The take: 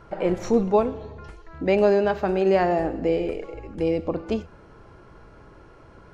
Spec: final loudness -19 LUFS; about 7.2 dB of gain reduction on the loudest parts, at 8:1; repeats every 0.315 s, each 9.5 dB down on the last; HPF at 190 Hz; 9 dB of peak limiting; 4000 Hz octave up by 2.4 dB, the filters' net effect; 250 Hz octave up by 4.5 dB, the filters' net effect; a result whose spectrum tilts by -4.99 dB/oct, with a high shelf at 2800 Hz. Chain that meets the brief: HPF 190 Hz; bell 250 Hz +8.5 dB; high shelf 2800 Hz -6.5 dB; bell 4000 Hz +9 dB; compressor 8:1, threshold -18 dBFS; limiter -19 dBFS; feedback echo 0.315 s, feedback 33%, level -9.5 dB; gain +9.5 dB

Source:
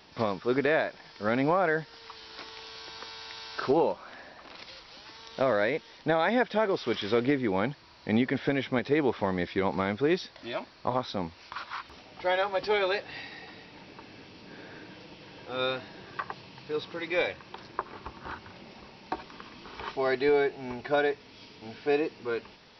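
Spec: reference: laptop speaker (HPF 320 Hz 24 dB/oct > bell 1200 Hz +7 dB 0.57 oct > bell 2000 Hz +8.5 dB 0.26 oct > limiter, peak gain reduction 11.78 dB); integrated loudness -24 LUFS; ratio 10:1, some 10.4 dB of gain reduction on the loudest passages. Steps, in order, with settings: compressor 10:1, threshold -31 dBFS; HPF 320 Hz 24 dB/oct; bell 1200 Hz +7 dB 0.57 oct; bell 2000 Hz +8.5 dB 0.26 oct; gain +15 dB; limiter -11 dBFS

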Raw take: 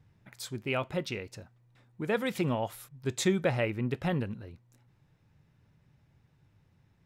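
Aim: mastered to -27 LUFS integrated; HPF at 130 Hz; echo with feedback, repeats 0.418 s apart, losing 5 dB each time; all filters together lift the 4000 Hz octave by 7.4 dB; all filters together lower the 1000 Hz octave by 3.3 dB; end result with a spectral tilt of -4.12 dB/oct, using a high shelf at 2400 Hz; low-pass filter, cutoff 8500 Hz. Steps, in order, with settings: HPF 130 Hz; LPF 8500 Hz; bell 1000 Hz -5.5 dB; high shelf 2400 Hz +3.5 dB; bell 4000 Hz +6.5 dB; feedback echo 0.418 s, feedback 56%, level -5 dB; gain +4.5 dB

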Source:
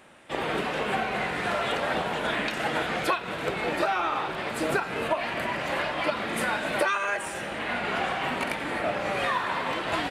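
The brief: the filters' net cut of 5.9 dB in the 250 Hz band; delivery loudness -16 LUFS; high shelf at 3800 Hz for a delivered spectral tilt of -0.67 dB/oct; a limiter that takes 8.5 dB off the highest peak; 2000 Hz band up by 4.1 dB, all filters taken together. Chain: bell 250 Hz -8.5 dB; bell 2000 Hz +6.5 dB; high shelf 3800 Hz -5 dB; gain +12 dB; limiter -7.5 dBFS

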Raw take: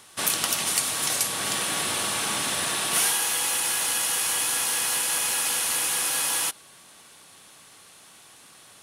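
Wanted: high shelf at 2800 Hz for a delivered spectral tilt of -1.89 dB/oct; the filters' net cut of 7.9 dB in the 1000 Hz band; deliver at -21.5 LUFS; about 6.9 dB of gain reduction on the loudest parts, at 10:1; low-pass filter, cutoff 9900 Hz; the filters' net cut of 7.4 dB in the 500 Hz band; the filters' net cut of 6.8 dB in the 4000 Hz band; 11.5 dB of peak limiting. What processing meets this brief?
LPF 9900 Hz; bell 500 Hz -7 dB; bell 1000 Hz -7 dB; high shelf 2800 Hz -6.5 dB; bell 4000 Hz -3 dB; compressor 10:1, threshold -35 dBFS; gain +20 dB; limiter -14.5 dBFS

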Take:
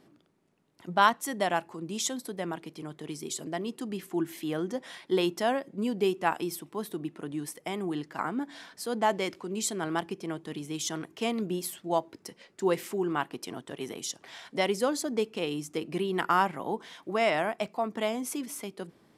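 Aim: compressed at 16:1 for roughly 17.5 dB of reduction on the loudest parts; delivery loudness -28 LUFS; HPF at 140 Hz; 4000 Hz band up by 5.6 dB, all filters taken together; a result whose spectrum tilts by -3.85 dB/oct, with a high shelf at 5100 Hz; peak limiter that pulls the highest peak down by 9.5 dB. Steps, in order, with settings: HPF 140 Hz; bell 4000 Hz +4.5 dB; high shelf 5100 Hz +7 dB; compressor 16:1, threshold -32 dBFS; gain +11 dB; limiter -16 dBFS

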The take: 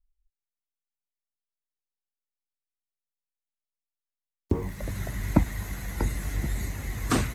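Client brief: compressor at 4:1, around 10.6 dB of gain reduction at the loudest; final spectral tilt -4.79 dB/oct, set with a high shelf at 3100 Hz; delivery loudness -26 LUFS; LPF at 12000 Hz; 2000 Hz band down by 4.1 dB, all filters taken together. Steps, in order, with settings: LPF 12000 Hz; bell 2000 Hz -6.5 dB; high shelf 3100 Hz +5 dB; compressor 4:1, threshold -28 dBFS; gain +9 dB

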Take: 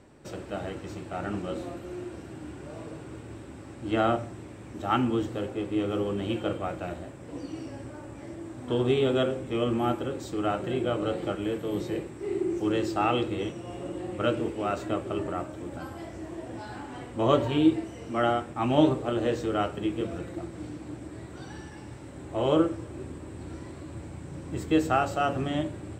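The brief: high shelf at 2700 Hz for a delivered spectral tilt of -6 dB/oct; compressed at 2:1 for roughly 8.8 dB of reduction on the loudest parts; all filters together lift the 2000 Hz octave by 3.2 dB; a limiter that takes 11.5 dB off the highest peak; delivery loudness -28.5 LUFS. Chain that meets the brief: bell 2000 Hz +8.5 dB; high shelf 2700 Hz -8.5 dB; compressor 2:1, threshold -32 dBFS; gain +9.5 dB; limiter -17.5 dBFS

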